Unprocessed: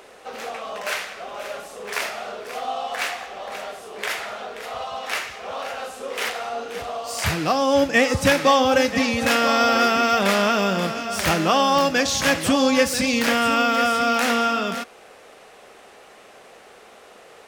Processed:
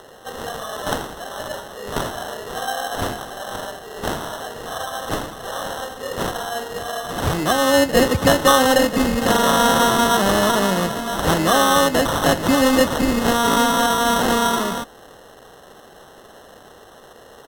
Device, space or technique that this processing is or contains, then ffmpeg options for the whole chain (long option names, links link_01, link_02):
crushed at another speed: -af "asetrate=55125,aresample=44100,acrusher=samples=15:mix=1:aa=0.000001,asetrate=35280,aresample=44100,volume=2.5dB"